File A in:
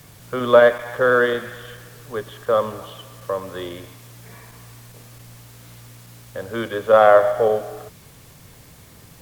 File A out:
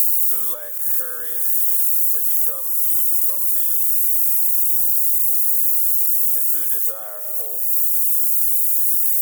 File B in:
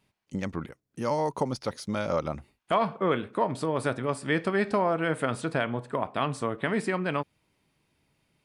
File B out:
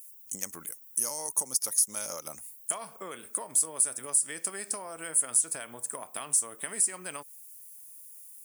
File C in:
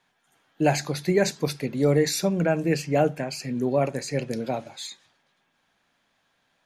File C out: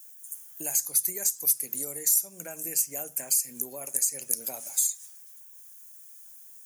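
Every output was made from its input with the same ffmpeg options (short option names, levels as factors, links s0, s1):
-af "aexciter=amount=11.8:drive=6.8:freq=6000,acompressor=threshold=0.0398:ratio=10,aemphasis=mode=production:type=riaa,volume=0.447"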